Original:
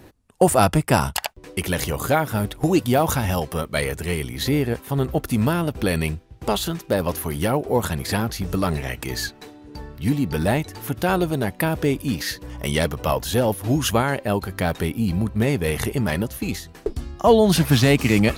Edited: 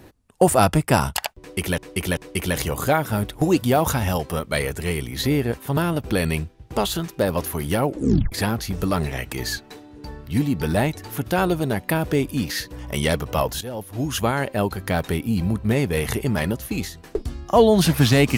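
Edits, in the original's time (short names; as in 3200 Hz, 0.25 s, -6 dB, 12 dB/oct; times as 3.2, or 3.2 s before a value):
1.39–1.78 loop, 3 plays
4.99–5.48 cut
7.57 tape stop 0.46 s
13.32–14.19 fade in, from -16 dB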